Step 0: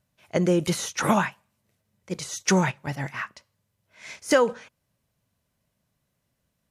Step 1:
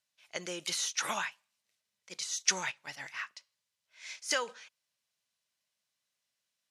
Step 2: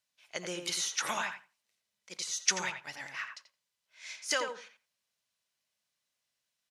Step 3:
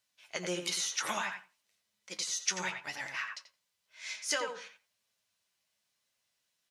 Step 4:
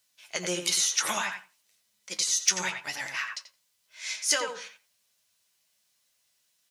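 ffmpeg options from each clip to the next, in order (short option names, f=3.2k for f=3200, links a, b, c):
-af "bandpass=f=4.6k:t=q:w=0.83:csg=0"
-filter_complex "[0:a]asplit=2[a][b];[b]adelay=86,lowpass=f=1.7k:p=1,volume=-5dB,asplit=2[c][d];[d]adelay=86,lowpass=f=1.7k:p=1,volume=0.18,asplit=2[e][f];[f]adelay=86,lowpass=f=1.7k:p=1,volume=0.18[g];[a][c][e][g]amix=inputs=4:normalize=0"
-af "acompressor=threshold=-37dB:ratio=2,flanger=delay=9:depth=2.3:regen=46:speed=0.98:shape=triangular,volume=7.5dB"
-af "asoftclip=type=hard:threshold=-19.5dB,highshelf=f=4.8k:g=9,volume=3.5dB"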